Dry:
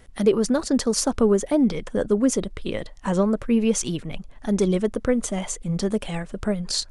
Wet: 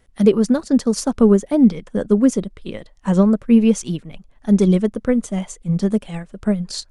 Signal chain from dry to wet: dynamic bell 190 Hz, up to +7 dB, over -34 dBFS, Q 1.4; upward expansion 1.5:1, over -33 dBFS; trim +3.5 dB

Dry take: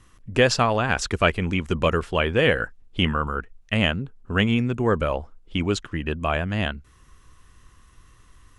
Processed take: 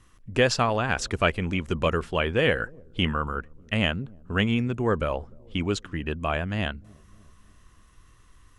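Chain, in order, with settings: feedback echo behind a low-pass 299 ms, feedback 53%, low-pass 410 Hz, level -23 dB; trim -3 dB

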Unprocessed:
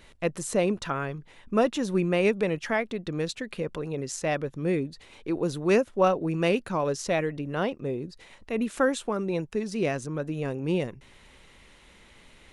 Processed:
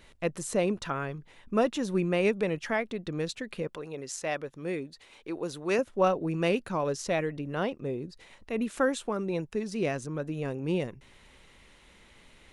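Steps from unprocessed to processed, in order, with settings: 3.67–5.79 s: bass shelf 280 Hz -11 dB; trim -2.5 dB

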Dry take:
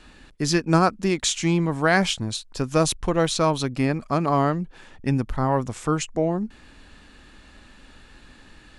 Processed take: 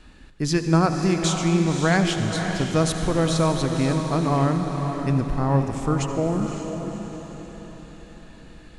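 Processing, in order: bass shelf 270 Hz +6.5 dB; echo that smears into a reverb 547 ms, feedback 45%, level -7 dB; reverberation RT60 3.4 s, pre-delay 67 ms, DRR 7.5 dB; trim -3.5 dB

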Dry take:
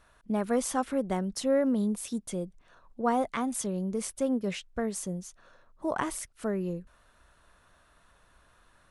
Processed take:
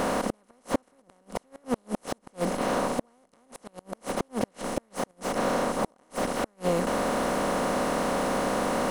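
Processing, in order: spectral levelling over time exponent 0.2; inverted gate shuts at -11 dBFS, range -41 dB; slew-rate limiter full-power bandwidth 79 Hz

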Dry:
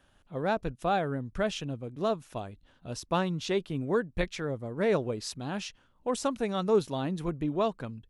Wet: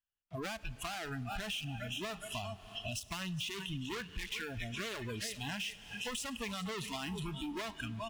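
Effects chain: resonant high shelf 3.6 kHz -6 dB, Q 3; feedback delay 405 ms, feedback 54%, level -14 dB; waveshaping leveller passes 5; spectral noise reduction 26 dB; amplifier tone stack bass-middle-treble 5-5-5; peak limiter -25 dBFS, peak gain reduction 7 dB; on a send at -18 dB: reverberation RT60 3.3 s, pre-delay 7 ms; on the sum: compression 5:1, threshold -52 dBFS, peak gain reduction 18.5 dB; trim +12.5 dB

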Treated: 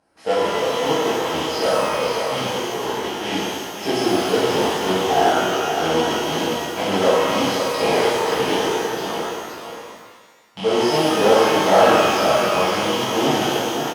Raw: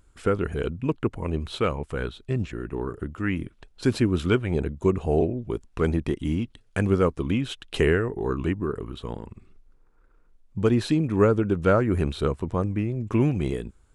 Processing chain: rattle on loud lows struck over -30 dBFS, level -16 dBFS; in parallel at -11.5 dB: integer overflow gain 19.5 dB; on the sum: cabinet simulation 180–8900 Hz, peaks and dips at 400 Hz -9 dB, 820 Hz +6 dB, 1.4 kHz -4 dB, 4 kHz +9 dB; on a send: delay 524 ms -7 dB; on the sum: formant shift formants +4 st; peaking EQ 640 Hz +13 dB 2.2 oct; band-stop 3.6 kHz, Q 17; pitch-shifted reverb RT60 1.5 s, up +12 st, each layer -8 dB, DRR -10 dB; trim -12 dB

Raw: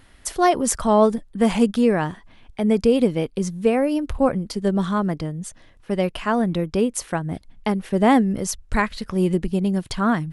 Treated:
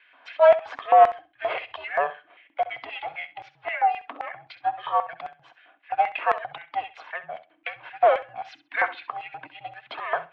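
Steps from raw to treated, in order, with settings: every band turned upside down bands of 500 Hz; comb of notches 510 Hz; de-hum 54.98 Hz, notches 10; saturation -12.5 dBFS, distortion -16 dB; high-order bell 700 Hz +8 dB 1.1 oct; mistuned SSB -200 Hz 240–3400 Hz; LFO high-pass square 3.8 Hz 930–2000 Hz; flutter echo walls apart 11.3 m, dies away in 0.27 s

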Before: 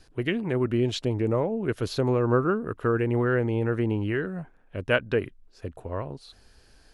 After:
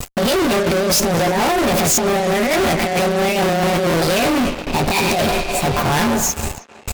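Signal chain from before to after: rotating-head pitch shifter +8 st; dynamic bell 1.2 kHz, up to -4 dB, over -37 dBFS, Q 1; Schroeder reverb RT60 2.6 s, combs from 28 ms, DRR 19 dB; in parallel at -4 dB: hysteresis with a dead band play -44 dBFS; on the sum: tremolo 4.5 Hz, depth 59%; comb of notches 160 Hz; compressor with a negative ratio -32 dBFS, ratio -0.5; gate with hold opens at -42 dBFS; fuzz box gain 49 dB, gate -55 dBFS; treble shelf 9.9 kHz +5 dB; speakerphone echo 320 ms, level -12 dB; crackling interface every 0.98 s, samples 1024, repeat, from 0.95 s; trim -2 dB

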